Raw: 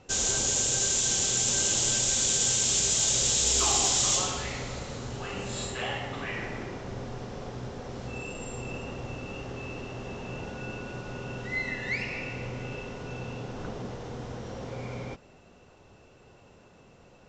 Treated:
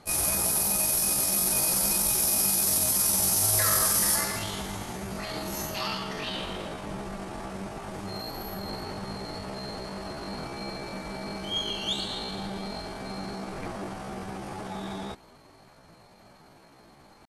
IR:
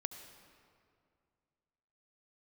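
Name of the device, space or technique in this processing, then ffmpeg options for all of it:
chipmunk voice: -af "asetrate=70004,aresample=44100,atempo=0.629961,volume=1.19"

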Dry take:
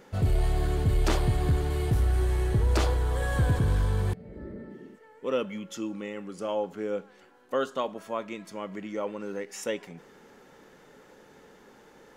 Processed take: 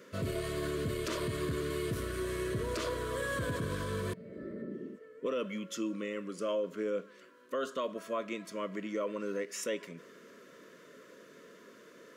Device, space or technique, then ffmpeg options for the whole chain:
PA system with an anti-feedback notch: -filter_complex "[0:a]highpass=190,asuperstop=centerf=810:order=20:qfactor=3.2,alimiter=level_in=1.26:limit=0.0631:level=0:latency=1:release=47,volume=0.794,asettb=1/sr,asplit=3[s0][s1][s2];[s0]atrim=end=4.624[s3];[s1]atrim=start=4.62:end=5.26,asetpts=PTS-STARTPTS,afade=t=in:d=0.004:c=qsin,afade=t=out:st=0.636:d=0.004:c=qsin,tiltshelf=f=870:g=6[s4];[s2]atrim=start=5.256[s5];[s3][s4]acrossfade=d=0.004:c1=hsin:c2=qsin[s6];[s6][s5]acrossfade=d=0.004:c1=qsin:c2=hsin"

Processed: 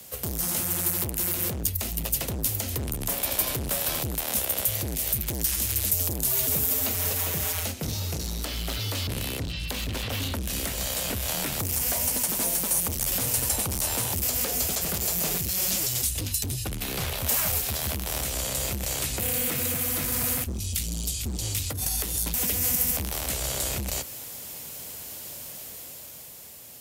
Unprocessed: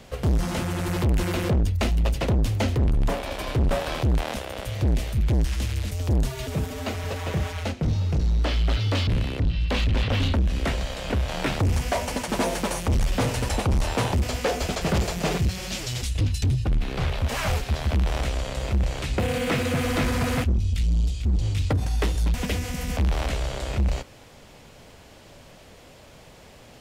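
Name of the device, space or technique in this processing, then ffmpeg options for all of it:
FM broadcast chain: -filter_complex "[0:a]highpass=65,dynaudnorm=f=190:g=13:m=2.24,acrossover=split=83|240|1600[s0][s1][s2][s3];[s0]acompressor=threshold=0.0398:ratio=4[s4];[s1]acompressor=threshold=0.0316:ratio=4[s5];[s2]acompressor=threshold=0.0447:ratio=4[s6];[s3]acompressor=threshold=0.0251:ratio=4[s7];[s4][s5][s6][s7]amix=inputs=4:normalize=0,aemphasis=mode=production:type=50fm,alimiter=limit=0.2:level=0:latency=1:release=131,asoftclip=type=hard:threshold=0.141,lowpass=f=15000:w=0.5412,lowpass=f=15000:w=1.3066,aemphasis=mode=production:type=50fm,volume=0.473"

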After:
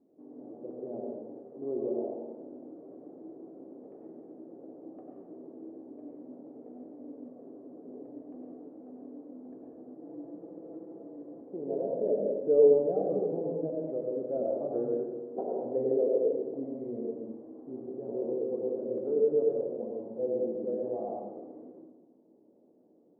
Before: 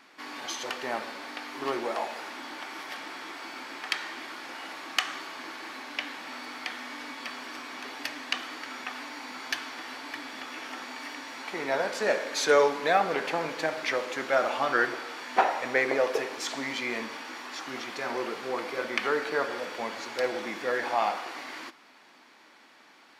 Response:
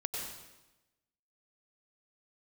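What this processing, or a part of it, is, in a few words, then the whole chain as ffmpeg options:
next room: -filter_complex "[0:a]highpass=65,lowpass=f=490:w=0.5412,lowpass=f=490:w=1.3066[s0];[1:a]atrim=start_sample=2205[s1];[s0][s1]afir=irnorm=-1:irlink=0,asettb=1/sr,asplit=3[s2][s3][s4];[s2]atrim=end=10.024[s5];[s3]atrim=start=10.02:end=11.41,asetpts=PTS-STARTPTS,afade=t=in:d=0.004:c=qsin,afade=t=out:st=1.386:d=0.004:c=qsin,aecho=1:1:6:0.84,atrim=end_sample=61299[s6];[s4]atrim=start=11.406[s7];[s5][s6]acrossfade=d=0.004:c1=hsin:c2=qsin[s8];[s8][s7]acrossfade=d=0.004:c1=qsin:c2=hsin,lowshelf=f=790:t=q:w=1.5:g=6,volume=0.473"

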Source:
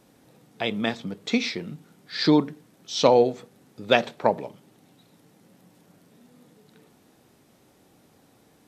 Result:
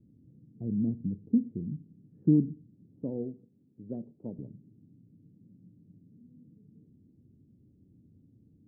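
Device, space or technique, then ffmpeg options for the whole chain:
the neighbour's flat through the wall: -filter_complex "[0:a]asettb=1/sr,asplit=3[s0][s1][s2];[s0]atrim=end=3.034[s3];[s1]atrim=start=3.03:end=4.39,asetpts=PTS-STARTPTS,afade=t=in:d=0.004:c=qsin,afade=t=out:st=1.356:d=0.004:c=qsin,highpass=f=470:p=1[s4];[s2]atrim=start=4.386[s5];[s3][s4]acrossfade=d=0.004:c1=hsin:c2=qsin[s6];[s6][s5]acrossfade=d=0.004:c1=qsin:c2=hsin,lowpass=f=280:w=0.5412,lowpass=f=280:w=1.3066,equalizer=f=93:t=o:w=0.89:g=8"

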